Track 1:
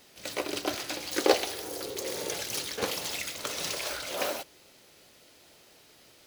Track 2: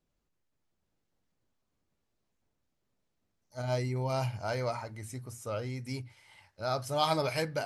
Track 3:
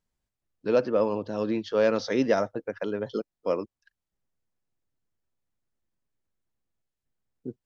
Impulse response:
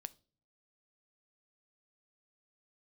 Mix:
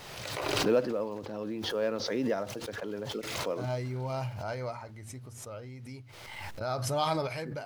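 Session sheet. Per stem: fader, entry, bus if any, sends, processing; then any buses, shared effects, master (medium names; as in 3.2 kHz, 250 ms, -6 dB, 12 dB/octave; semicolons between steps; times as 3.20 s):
-10.5 dB, 0.00 s, no send, graphic EQ 125/250/1000 Hz +11/-10/+5 dB; compression 3:1, threshold -44 dBFS, peak gain reduction 20.5 dB
-0.5 dB, 0.00 s, no send, gate -47 dBFS, range -14 dB; companded quantiser 8-bit
-6.5 dB, 0.00 s, send -5.5 dB, short-mantissa float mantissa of 4-bit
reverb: on, pre-delay 6 ms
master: treble shelf 5.1 kHz -8.5 dB; random-step tremolo 1.1 Hz; swell ahead of each attack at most 34 dB/s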